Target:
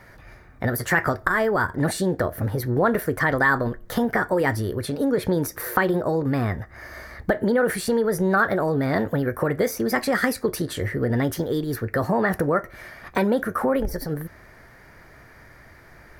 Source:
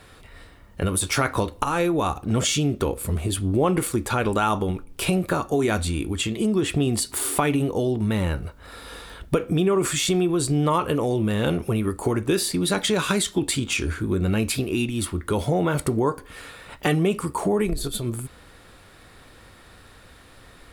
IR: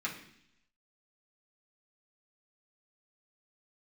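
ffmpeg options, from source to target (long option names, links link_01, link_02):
-af "asetrate=56448,aresample=44100,highshelf=frequency=2300:width_type=q:width=3:gain=-6.5"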